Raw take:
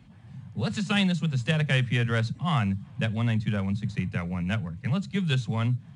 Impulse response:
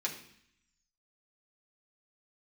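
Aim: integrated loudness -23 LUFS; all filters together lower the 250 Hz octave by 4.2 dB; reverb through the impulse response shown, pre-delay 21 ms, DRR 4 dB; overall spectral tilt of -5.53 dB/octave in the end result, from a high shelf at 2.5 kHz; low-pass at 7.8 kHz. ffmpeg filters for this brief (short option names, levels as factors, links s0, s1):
-filter_complex "[0:a]lowpass=7800,equalizer=f=250:t=o:g=-7,highshelf=f=2500:g=-6,asplit=2[s0][s1];[1:a]atrim=start_sample=2205,adelay=21[s2];[s1][s2]afir=irnorm=-1:irlink=0,volume=0.422[s3];[s0][s3]amix=inputs=2:normalize=0,volume=2"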